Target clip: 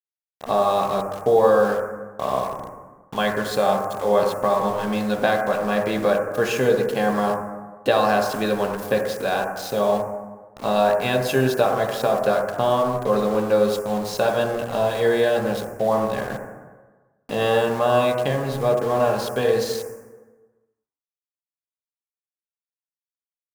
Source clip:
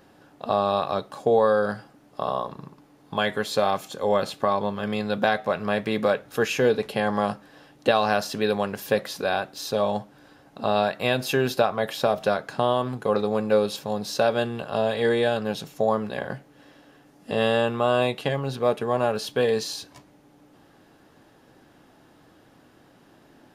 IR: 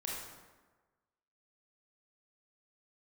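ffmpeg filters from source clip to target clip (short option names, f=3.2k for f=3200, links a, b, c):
-filter_complex "[0:a]aeval=exprs='val(0)*gte(abs(val(0)),0.02)':c=same,asplit=2[a][b];[b]asuperstop=centerf=3700:order=4:qfactor=0.69[c];[1:a]atrim=start_sample=2205,adelay=15[d];[c][d]afir=irnorm=-1:irlink=0,volume=-1dB[e];[a][e]amix=inputs=2:normalize=0"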